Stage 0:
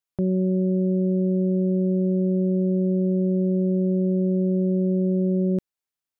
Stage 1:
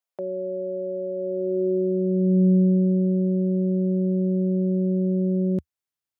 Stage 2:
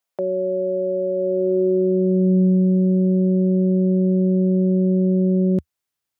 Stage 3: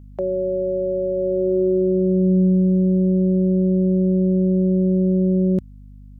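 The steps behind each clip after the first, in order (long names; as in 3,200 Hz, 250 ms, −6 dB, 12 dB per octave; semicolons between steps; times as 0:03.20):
high-pass filter sweep 580 Hz → 78 Hz, 0:01.15–0:03.43; level −2 dB
downward compressor 3 to 1, threshold −22 dBFS, peak gain reduction 6 dB; level +7 dB
mains hum 50 Hz, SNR 23 dB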